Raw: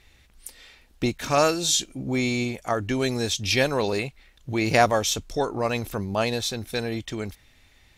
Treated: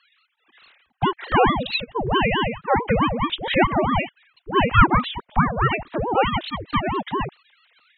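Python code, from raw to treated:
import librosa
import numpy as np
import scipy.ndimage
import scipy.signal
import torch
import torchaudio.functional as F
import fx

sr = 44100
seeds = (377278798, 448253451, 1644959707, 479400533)

p1 = fx.sine_speech(x, sr)
p2 = fx.dynamic_eq(p1, sr, hz=200.0, q=0.82, threshold_db=-37.0, ratio=4.0, max_db=4)
p3 = fx.rider(p2, sr, range_db=4, speed_s=0.5)
p4 = p2 + (p3 * librosa.db_to_amplitude(0.5))
y = fx.ring_lfo(p4, sr, carrier_hz=430.0, swing_pct=75, hz=4.6)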